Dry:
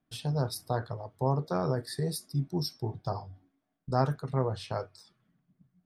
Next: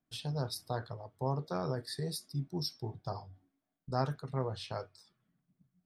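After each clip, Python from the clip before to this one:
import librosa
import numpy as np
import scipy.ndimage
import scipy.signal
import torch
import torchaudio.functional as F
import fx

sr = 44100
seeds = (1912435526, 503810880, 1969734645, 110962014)

y = fx.dynamic_eq(x, sr, hz=3800.0, q=0.79, threshold_db=-52.0, ratio=4.0, max_db=6)
y = y * 10.0 ** (-6.0 / 20.0)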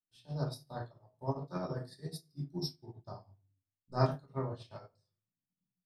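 y = fx.room_shoebox(x, sr, seeds[0], volume_m3=320.0, walls='furnished', distance_m=2.6)
y = fx.upward_expand(y, sr, threshold_db=-42.0, expansion=2.5)
y = y * 10.0 ** (1.0 / 20.0)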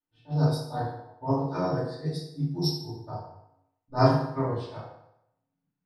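y = fx.env_lowpass(x, sr, base_hz=1600.0, full_db=-33.0)
y = fx.rev_fdn(y, sr, rt60_s=0.81, lf_ratio=0.8, hf_ratio=0.75, size_ms=20.0, drr_db=-7.0)
y = y * 10.0 ** (2.5 / 20.0)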